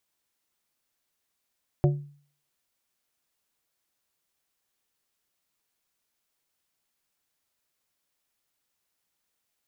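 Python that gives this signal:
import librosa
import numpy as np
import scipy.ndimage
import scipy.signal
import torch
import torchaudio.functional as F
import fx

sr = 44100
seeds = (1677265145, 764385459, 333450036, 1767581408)

y = fx.strike_glass(sr, length_s=0.89, level_db=-15.5, body='plate', hz=144.0, decay_s=0.48, tilt_db=5.0, modes=4)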